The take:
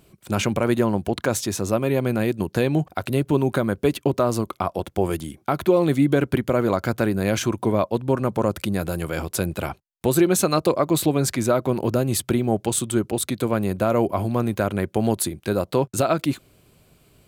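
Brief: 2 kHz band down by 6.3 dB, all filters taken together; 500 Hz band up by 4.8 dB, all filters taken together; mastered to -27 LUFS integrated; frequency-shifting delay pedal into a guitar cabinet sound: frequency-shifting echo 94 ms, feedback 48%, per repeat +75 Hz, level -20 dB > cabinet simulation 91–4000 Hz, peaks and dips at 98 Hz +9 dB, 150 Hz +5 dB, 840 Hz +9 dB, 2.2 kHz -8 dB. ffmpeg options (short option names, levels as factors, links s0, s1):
-filter_complex "[0:a]equalizer=f=500:t=o:g=5.5,equalizer=f=2000:t=o:g=-7.5,asplit=5[s0][s1][s2][s3][s4];[s1]adelay=94,afreqshift=75,volume=0.1[s5];[s2]adelay=188,afreqshift=150,volume=0.0479[s6];[s3]adelay=282,afreqshift=225,volume=0.0229[s7];[s4]adelay=376,afreqshift=300,volume=0.0111[s8];[s0][s5][s6][s7][s8]amix=inputs=5:normalize=0,highpass=91,equalizer=f=98:t=q:w=4:g=9,equalizer=f=150:t=q:w=4:g=5,equalizer=f=840:t=q:w=4:g=9,equalizer=f=2200:t=q:w=4:g=-8,lowpass=f=4000:w=0.5412,lowpass=f=4000:w=1.3066,volume=0.422"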